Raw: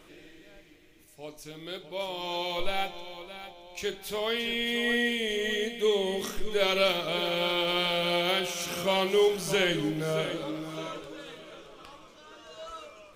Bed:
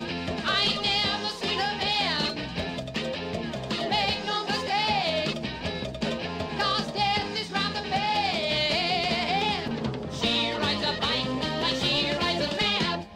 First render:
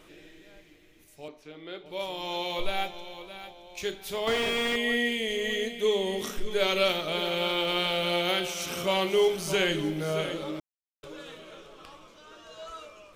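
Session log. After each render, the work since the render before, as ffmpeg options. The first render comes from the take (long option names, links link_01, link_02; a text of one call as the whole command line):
ffmpeg -i in.wav -filter_complex "[0:a]asettb=1/sr,asplit=3[link_01][link_02][link_03];[link_01]atrim=end=1.284[link_04];[link_02]atrim=start=1.28:end=1.86,asetpts=PTS-STARTPTS,afade=type=in:duration=0.004:curve=qsin,afade=type=out:start_time=0.576:duration=0.004:curve=qsin,acrossover=split=190 3400:gain=0.224 1 0.1[link_05][link_06][link_07];[link_05][link_06][link_07]amix=inputs=3:normalize=0[link_08];[link_03]atrim=start=1.856[link_09];[link_04][link_08]acrossfade=duration=0.004:curve1=hsin:curve2=qsin[link_10];[link_10][link_09]acrossfade=duration=0.004:curve1=qsin:curve2=hsin,asettb=1/sr,asplit=3[link_11][link_12][link_13];[link_11]atrim=end=4.274[link_14];[link_12]atrim=start=4.27:end=4.76,asetpts=PTS-STARTPTS,afade=type=in:duration=0.004:curve=qsin,afade=type=out:start_time=0.486:duration=0.004:curve=qsin,asplit=2[link_15][link_16];[link_16]highpass=frequency=720:poles=1,volume=37dB,asoftclip=type=tanh:threshold=-16.5dB[link_17];[link_15][link_17]amix=inputs=2:normalize=0,lowpass=frequency=1200:poles=1,volume=-6dB[link_18];[link_13]atrim=start=4.756[link_19];[link_14][link_18]acrossfade=duration=0.004:curve1=hsin:curve2=qsin[link_20];[link_20][link_19]acrossfade=duration=0.004:curve1=qsin:curve2=hsin,asplit=3[link_21][link_22][link_23];[link_21]atrim=end=10.6,asetpts=PTS-STARTPTS,afade=type=out:start_time=10.596:duration=0.004:curve=hsin[link_24];[link_22]atrim=start=10.6:end=11.03,asetpts=PTS-STARTPTS,volume=0[link_25];[link_23]atrim=start=11.03,asetpts=PTS-STARTPTS,afade=type=in:duration=0.004:curve=hsin[link_26];[link_24][link_25][link_26]concat=n=3:v=0:a=1" out.wav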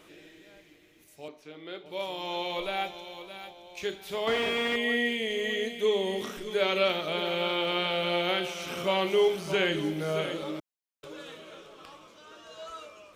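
ffmpeg -i in.wav -filter_complex "[0:a]acrossover=split=3700[link_01][link_02];[link_02]acompressor=threshold=-46dB:ratio=4:attack=1:release=60[link_03];[link_01][link_03]amix=inputs=2:normalize=0,highpass=frequency=110:poles=1" out.wav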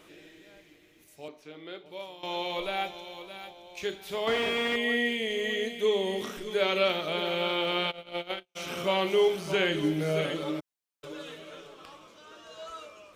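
ffmpeg -i in.wav -filter_complex "[0:a]asplit=3[link_01][link_02][link_03];[link_01]afade=type=out:start_time=7.9:duration=0.02[link_04];[link_02]agate=range=-50dB:threshold=-27dB:ratio=16:release=100:detection=peak,afade=type=in:start_time=7.9:duration=0.02,afade=type=out:start_time=8.55:duration=0.02[link_05];[link_03]afade=type=in:start_time=8.55:duration=0.02[link_06];[link_04][link_05][link_06]amix=inputs=3:normalize=0,asettb=1/sr,asplit=3[link_07][link_08][link_09];[link_07]atrim=end=9.824[link_10];[link_08]atrim=start=9.82:end=11.74,asetpts=PTS-STARTPTS,afade=type=in:duration=0.004:curve=qsin,afade=type=out:start_time=1.916:duration=0.004:curve=qsin,aecho=1:1:6.8:0.6,atrim=end_sample=84672[link_11];[link_09]atrim=start=11.736[link_12];[link_10][link_11]acrossfade=duration=0.004:curve1=hsin:curve2=qsin[link_13];[link_13][link_12]acrossfade=duration=0.004:curve1=qsin:curve2=hsin,asplit=2[link_14][link_15];[link_14]atrim=end=2.23,asetpts=PTS-STARTPTS,afade=type=out:start_time=1.61:duration=0.62:silence=0.199526[link_16];[link_15]atrim=start=2.23,asetpts=PTS-STARTPTS,afade=type=in:duration=0.004:curve=hsin:silence=0.199526[link_17];[link_16][link_17]concat=n=2:v=0:a=1" out.wav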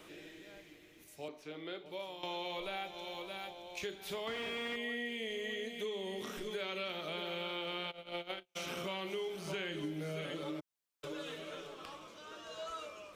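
ffmpeg -i in.wav -filter_complex "[0:a]acrossover=split=390|950|3700[link_01][link_02][link_03][link_04];[link_02]alimiter=level_in=8dB:limit=-24dB:level=0:latency=1,volume=-8dB[link_05];[link_01][link_05][link_03][link_04]amix=inputs=4:normalize=0,acompressor=threshold=-39dB:ratio=4" out.wav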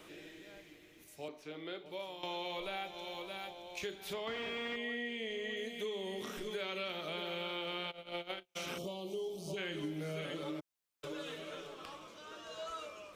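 ffmpeg -i in.wav -filter_complex "[0:a]asettb=1/sr,asplit=3[link_01][link_02][link_03];[link_01]atrim=end=4.134[link_04];[link_02]atrim=start=4.13:end=5.57,asetpts=PTS-STARTPTS,afade=type=in:duration=0.004:curve=qsin,afade=type=out:start_time=1.436:duration=0.004:curve=qsin,equalizer=frequency=12000:width=0.88:gain=-13[link_05];[link_03]atrim=start=5.566[link_06];[link_04][link_05]acrossfade=duration=0.004:curve1=hsin:curve2=qsin[link_07];[link_07][link_06]acrossfade=duration=0.004:curve1=qsin:curve2=hsin,asplit=3[link_08][link_09][link_10];[link_08]afade=type=out:start_time=8.77:duration=0.02[link_11];[link_09]asuperstop=centerf=1700:order=4:qfactor=0.57,afade=type=in:start_time=8.77:duration=0.02,afade=type=out:start_time=9.56:duration=0.02[link_12];[link_10]afade=type=in:start_time=9.56:duration=0.02[link_13];[link_11][link_12][link_13]amix=inputs=3:normalize=0" out.wav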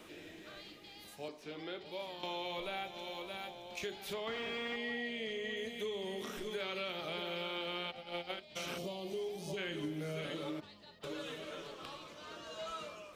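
ffmpeg -i in.wav -i bed.wav -filter_complex "[1:a]volume=-30dB[link_01];[0:a][link_01]amix=inputs=2:normalize=0" out.wav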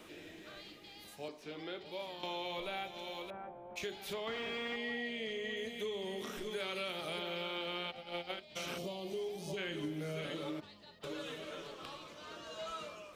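ffmpeg -i in.wav -filter_complex "[0:a]asettb=1/sr,asplit=3[link_01][link_02][link_03];[link_01]atrim=end=3.304[link_04];[link_02]atrim=start=3.3:end=3.76,asetpts=PTS-STARTPTS,afade=type=in:duration=0.004:curve=qsin,afade=type=out:start_time=0.456:duration=0.004:curve=qsin,lowpass=frequency=1500:width=0.5412,lowpass=frequency=1500:width=1.3066[link_05];[link_03]atrim=start=3.756[link_06];[link_04][link_05]acrossfade=duration=0.004:curve1=hsin:curve2=qsin[link_07];[link_07][link_06]acrossfade=duration=0.004:curve1=qsin:curve2=hsin,asettb=1/sr,asplit=3[link_08][link_09][link_10];[link_08]atrim=end=6.564[link_11];[link_09]atrim=start=6.56:end=7.19,asetpts=PTS-STARTPTS,afade=type=in:duration=0.004:curve=qsin,afade=type=out:start_time=0.626:duration=0.004:curve=qsin,equalizer=frequency=10000:width_type=o:width=0.64:gain=13[link_12];[link_10]atrim=start=7.186[link_13];[link_11][link_12]acrossfade=duration=0.004:curve1=hsin:curve2=qsin[link_14];[link_14][link_13]acrossfade=duration=0.004:curve1=qsin:curve2=hsin" out.wav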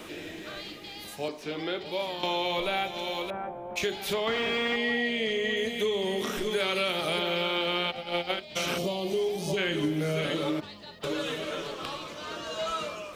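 ffmpeg -i in.wav -af "volume=11.5dB" out.wav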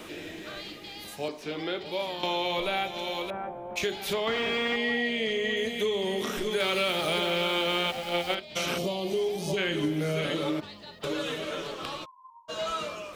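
ffmpeg -i in.wav -filter_complex "[0:a]asettb=1/sr,asplit=3[link_01][link_02][link_03];[link_01]atrim=end=6.604[link_04];[link_02]atrim=start=6.6:end=8.35,asetpts=PTS-STARTPTS,afade=type=in:duration=0.004:curve=qsin,afade=type=out:start_time=1.746:duration=0.004:curve=qsin,aeval=exprs='val(0)+0.5*0.0141*sgn(val(0))':channel_layout=same[link_05];[link_03]atrim=start=8.346[link_06];[link_04][link_05]acrossfade=duration=0.004:curve1=hsin:curve2=qsin[link_07];[link_07][link_06]acrossfade=duration=0.004:curve1=qsin:curve2=hsin,asplit=3[link_08][link_09][link_10];[link_08]afade=type=out:start_time=12.04:duration=0.02[link_11];[link_09]asuperpass=centerf=1000:order=20:qfactor=7.2,afade=type=in:start_time=12.04:duration=0.02,afade=type=out:start_time=12.48:duration=0.02[link_12];[link_10]afade=type=in:start_time=12.48:duration=0.02[link_13];[link_11][link_12][link_13]amix=inputs=3:normalize=0" out.wav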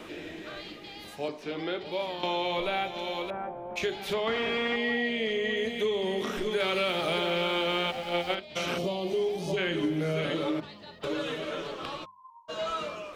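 ffmpeg -i in.wav -af "highshelf=frequency=5500:gain=-10.5,bandreject=frequency=50:width_type=h:width=6,bandreject=frequency=100:width_type=h:width=6,bandreject=frequency=150:width_type=h:width=6,bandreject=frequency=200:width_type=h:width=6" out.wav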